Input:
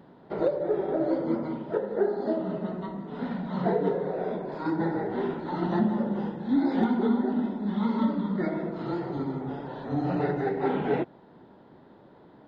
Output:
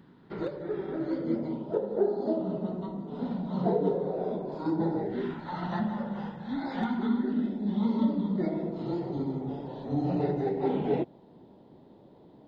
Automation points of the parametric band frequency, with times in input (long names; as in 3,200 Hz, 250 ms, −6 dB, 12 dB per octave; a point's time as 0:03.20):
parametric band −14 dB 1.1 octaves
0:01.10 640 Hz
0:01.64 1,800 Hz
0:04.96 1,800 Hz
0:05.49 340 Hz
0:06.80 340 Hz
0:07.78 1,500 Hz